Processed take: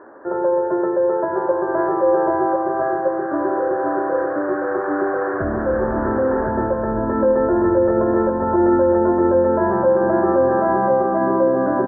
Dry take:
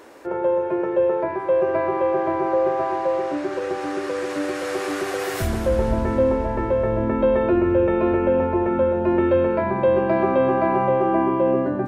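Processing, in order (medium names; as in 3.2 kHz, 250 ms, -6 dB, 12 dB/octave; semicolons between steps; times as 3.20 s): peak limiter -14 dBFS, peak gain reduction 6 dB; Chebyshev low-pass 1.7 kHz, order 6; bass shelf 110 Hz -11.5 dB; band-stop 480 Hz, Q 15; delay 1066 ms -3.5 dB; reverberation RT60 1.2 s, pre-delay 78 ms, DRR 12.5 dB; trim +4.5 dB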